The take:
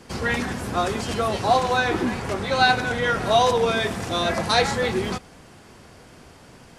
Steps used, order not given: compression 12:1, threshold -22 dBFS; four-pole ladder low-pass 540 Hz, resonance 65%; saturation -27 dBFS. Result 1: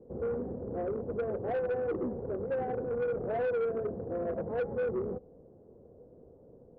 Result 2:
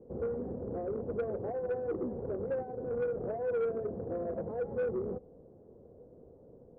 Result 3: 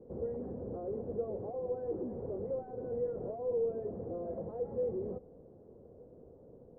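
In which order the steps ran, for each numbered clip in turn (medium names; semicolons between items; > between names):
four-pole ladder low-pass > compression > saturation; compression > four-pole ladder low-pass > saturation; compression > saturation > four-pole ladder low-pass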